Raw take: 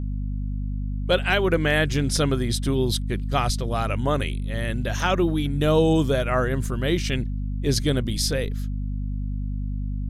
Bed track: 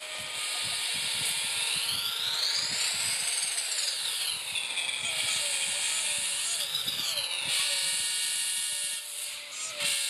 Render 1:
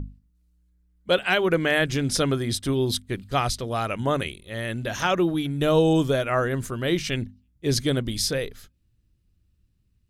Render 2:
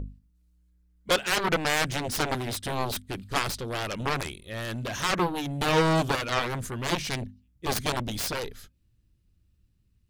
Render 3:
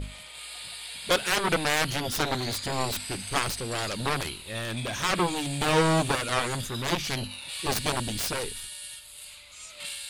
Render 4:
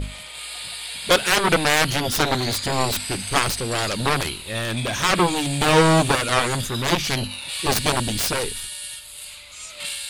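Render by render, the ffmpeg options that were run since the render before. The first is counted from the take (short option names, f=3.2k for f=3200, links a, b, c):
-af "bandreject=f=50:t=h:w=6,bandreject=f=100:t=h:w=6,bandreject=f=150:t=h:w=6,bandreject=f=200:t=h:w=6,bandreject=f=250:t=h:w=6"
-af "aeval=exprs='0.398*(cos(1*acos(clip(val(0)/0.398,-1,1)))-cos(1*PI/2))+0.112*(cos(7*acos(clip(val(0)/0.398,-1,1)))-cos(7*PI/2))':c=same,asoftclip=type=tanh:threshold=-14dB"
-filter_complex "[1:a]volume=-8.5dB[a];[0:a][a]amix=inputs=2:normalize=0"
-af "volume=7dB"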